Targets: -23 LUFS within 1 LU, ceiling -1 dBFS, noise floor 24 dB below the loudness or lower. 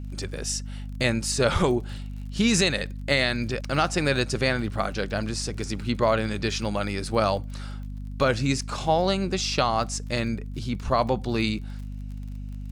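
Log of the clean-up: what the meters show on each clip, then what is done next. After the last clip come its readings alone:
ticks 40/s; hum 50 Hz; harmonics up to 250 Hz; hum level -32 dBFS; loudness -25.5 LUFS; peak -9.5 dBFS; loudness target -23.0 LUFS
-> de-click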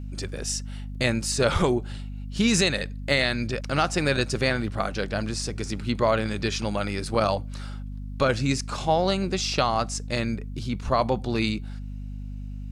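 ticks 0.16/s; hum 50 Hz; harmonics up to 250 Hz; hum level -32 dBFS
-> notches 50/100/150/200/250 Hz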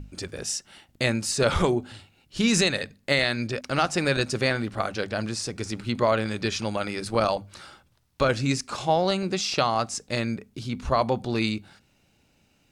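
hum none; loudness -26.0 LUFS; peak -10.0 dBFS; loudness target -23.0 LUFS
-> gain +3 dB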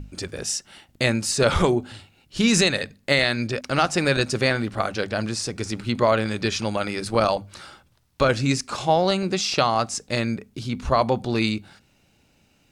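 loudness -23.0 LUFS; peak -7.0 dBFS; noise floor -62 dBFS

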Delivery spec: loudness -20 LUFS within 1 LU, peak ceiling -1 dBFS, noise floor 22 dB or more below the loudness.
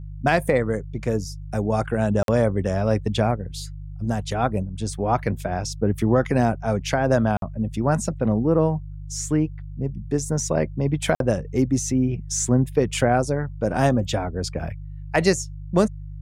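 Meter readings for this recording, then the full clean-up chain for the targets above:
dropouts 3; longest dropout 52 ms; hum 50 Hz; harmonics up to 150 Hz; hum level -32 dBFS; loudness -23.5 LUFS; peak -6.0 dBFS; loudness target -20.0 LUFS
-> interpolate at 2.23/7.37/11.15, 52 ms; de-hum 50 Hz, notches 3; gain +3.5 dB

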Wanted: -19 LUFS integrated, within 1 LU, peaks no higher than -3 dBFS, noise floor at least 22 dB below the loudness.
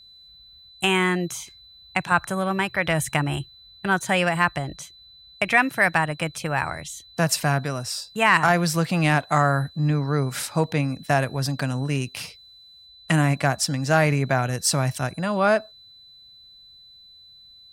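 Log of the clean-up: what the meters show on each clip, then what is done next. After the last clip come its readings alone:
steady tone 4000 Hz; tone level -47 dBFS; loudness -23.0 LUFS; peak -5.5 dBFS; loudness target -19.0 LUFS
-> notch 4000 Hz, Q 30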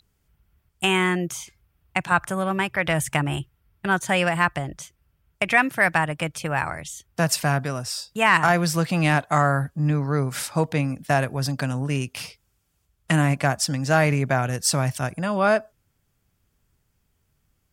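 steady tone none; loudness -23.0 LUFS; peak -5.5 dBFS; loudness target -19.0 LUFS
-> gain +4 dB; limiter -3 dBFS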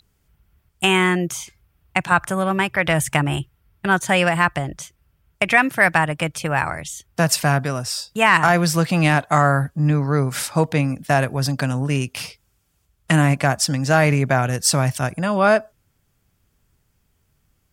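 loudness -19.0 LUFS; peak -3.0 dBFS; noise floor -66 dBFS

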